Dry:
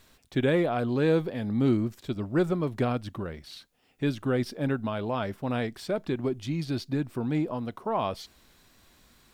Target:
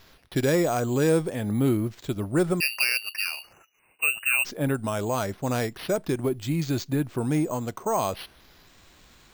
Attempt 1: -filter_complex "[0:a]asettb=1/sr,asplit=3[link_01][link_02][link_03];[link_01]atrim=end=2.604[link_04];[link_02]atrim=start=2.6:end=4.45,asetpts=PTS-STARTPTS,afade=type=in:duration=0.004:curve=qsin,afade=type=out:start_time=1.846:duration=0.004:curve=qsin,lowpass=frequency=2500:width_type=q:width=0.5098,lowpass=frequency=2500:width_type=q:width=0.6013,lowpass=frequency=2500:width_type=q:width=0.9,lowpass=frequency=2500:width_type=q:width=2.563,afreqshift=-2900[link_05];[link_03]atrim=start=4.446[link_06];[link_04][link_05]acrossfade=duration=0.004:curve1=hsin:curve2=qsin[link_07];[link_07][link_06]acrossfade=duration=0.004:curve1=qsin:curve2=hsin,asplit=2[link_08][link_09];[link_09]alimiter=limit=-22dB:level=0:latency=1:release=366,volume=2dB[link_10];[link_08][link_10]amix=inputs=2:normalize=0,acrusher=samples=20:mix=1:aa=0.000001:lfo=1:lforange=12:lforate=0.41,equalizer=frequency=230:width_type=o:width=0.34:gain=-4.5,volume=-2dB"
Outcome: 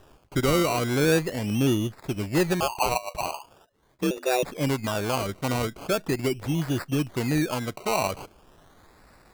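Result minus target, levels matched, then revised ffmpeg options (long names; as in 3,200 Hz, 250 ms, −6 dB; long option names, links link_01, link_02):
sample-and-hold swept by an LFO: distortion +9 dB
-filter_complex "[0:a]asettb=1/sr,asplit=3[link_01][link_02][link_03];[link_01]atrim=end=2.604[link_04];[link_02]atrim=start=2.6:end=4.45,asetpts=PTS-STARTPTS,afade=type=in:duration=0.004:curve=qsin,afade=type=out:start_time=1.846:duration=0.004:curve=qsin,lowpass=frequency=2500:width_type=q:width=0.5098,lowpass=frequency=2500:width_type=q:width=0.6013,lowpass=frequency=2500:width_type=q:width=0.9,lowpass=frequency=2500:width_type=q:width=2.563,afreqshift=-2900[link_05];[link_03]atrim=start=4.446[link_06];[link_04][link_05]acrossfade=duration=0.004:curve1=hsin:curve2=qsin[link_07];[link_07][link_06]acrossfade=duration=0.004:curve1=qsin:curve2=hsin,asplit=2[link_08][link_09];[link_09]alimiter=limit=-22dB:level=0:latency=1:release=366,volume=2dB[link_10];[link_08][link_10]amix=inputs=2:normalize=0,acrusher=samples=5:mix=1:aa=0.000001:lfo=1:lforange=3:lforate=0.41,equalizer=frequency=230:width_type=o:width=0.34:gain=-4.5,volume=-2dB"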